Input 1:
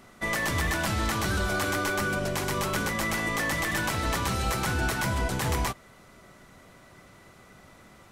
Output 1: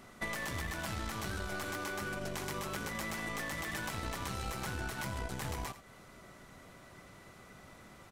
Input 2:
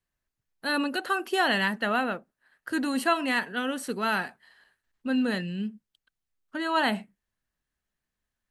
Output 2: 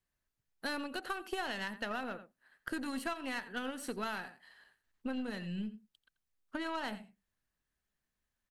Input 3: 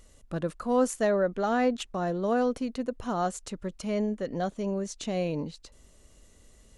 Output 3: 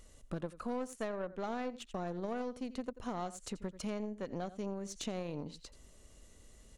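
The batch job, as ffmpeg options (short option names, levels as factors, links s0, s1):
-filter_complex "[0:a]asplit=2[s0][s1];[s1]aecho=0:1:86:0.158[s2];[s0][s2]amix=inputs=2:normalize=0,aeval=exprs='0.282*(cos(1*acos(clip(val(0)/0.282,-1,1)))-cos(1*PI/2))+0.02*(cos(4*acos(clip(val(0)/0.282,-1,1)))-cos(4*PI/2))+0.0141*(cos(7*acos(clip(val(0)/0.282,-1,1)))-cos(7*PI/2))+0.00447*(cos(8*acos(clip(val(0)/0.282,-1,1)))-cos(8*PI/2))':c=same,acompressor=threshold=0.0141:ratio=6,volume=1.19"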